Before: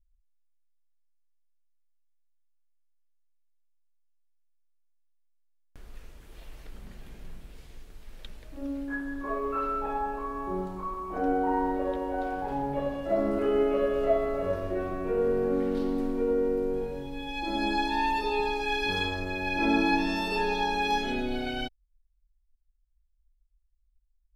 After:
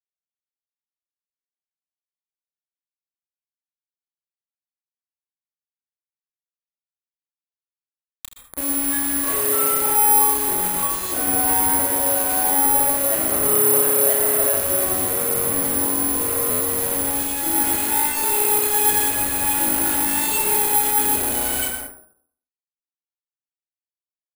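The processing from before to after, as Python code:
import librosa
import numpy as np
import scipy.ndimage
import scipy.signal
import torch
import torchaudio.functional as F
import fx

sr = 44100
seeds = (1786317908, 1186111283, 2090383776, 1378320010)

y = fx.octave_divider(x, sr, octaves=2, level_db=-6.0)
y = fx.highpass(y, sr, hz=130.0, slope=6)
y = fx.high_shelf(y, sr, hz=4100.0, db=-5.5)
y = fx.hum_notches(y, sr, base_hz=50, count=5)
y = y + 0.39 * np.pad(y, (int(3.4 * sr / 1000.0), 0))[:len(y)]
y = fx.quant_companded(y, sr, bits=2)
y = fx.room_early_taps(y, sr, ms=(31, 67, 79), db=(-6.5, -17.0, -10.5))
y = fx.rev_plate(y, sr, seeds[0], rt60_s=0.57, hf_ratio=0.3, predelay_ms=110, drr_db=4.0)
y = (np.kron(scipy.signal.resample_poly(y, 1, 4), np.eye(4)[0]) * 4)[:len(y)]
y = fx.buffer_glitch(y, sr, at_s=(16.5,), block=512, repeats=8)
y = y * librosa.db_to_amplitude(-1.5)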